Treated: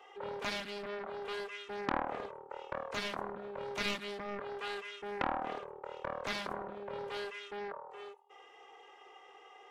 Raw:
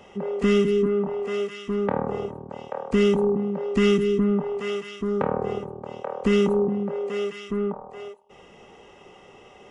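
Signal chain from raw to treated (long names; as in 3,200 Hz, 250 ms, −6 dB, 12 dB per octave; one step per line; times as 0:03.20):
high-pass filter 780 Hz 12 dB per octave
high-shelf EQ 3,200 Hz −10.5 dB
flanger swept by the level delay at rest 2.6 ms, full sweep at −18.5 dBFS
highs frequency-modulated by the lows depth 0.94 ms
level +1 dB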